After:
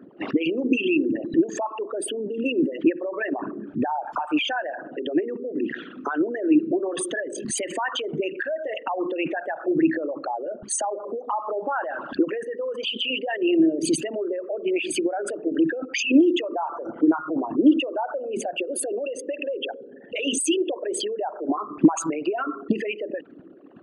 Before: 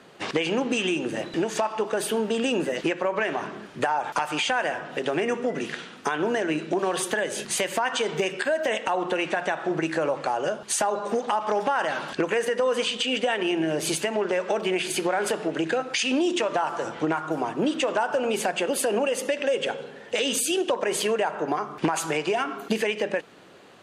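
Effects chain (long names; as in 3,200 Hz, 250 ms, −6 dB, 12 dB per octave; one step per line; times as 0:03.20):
spectral envelope exaggerated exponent 3
low shelf with overshoot 360 Hz +8 dB, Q 3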